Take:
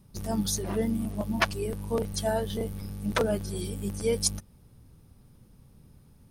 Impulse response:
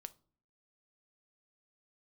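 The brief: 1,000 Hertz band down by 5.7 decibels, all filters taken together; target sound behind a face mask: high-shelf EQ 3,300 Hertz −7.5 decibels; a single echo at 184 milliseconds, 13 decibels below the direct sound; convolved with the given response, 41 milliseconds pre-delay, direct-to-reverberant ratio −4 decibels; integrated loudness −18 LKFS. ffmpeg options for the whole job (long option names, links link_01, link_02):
-filter_complex "[0:a]equalizer=frequency=1000:width_type=o:gain=-7,aecho=1:1:184:0.224,asplit=2[link_01][link_02];[1:a]atrim=start_sample=2205,adelay=41[link_03];[link_02][link_03]afir=irnorm=-1:irlink=0,volume=9.5dB[link_04];[link_01][link_04]amix=inputs=2:normalize=0,highshelf=frequency=3300:gain=-7.5,volume=7.5dB"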